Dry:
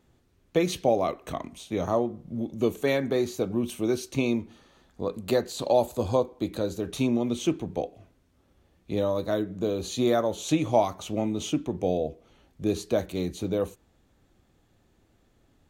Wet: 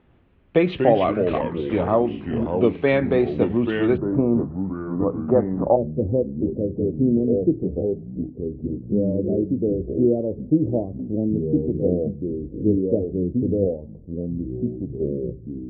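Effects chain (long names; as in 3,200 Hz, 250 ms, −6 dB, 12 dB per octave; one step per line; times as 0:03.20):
delay with pitch and tempo change per echo 97 ms, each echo −4 semitones, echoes 3, each echo −6 dB
Butterworth low-pass 3,100 Hz 36 dB per octave, from 0:03.96 1,300 Hz, from 0:05.75 500 Hz
level +6 dB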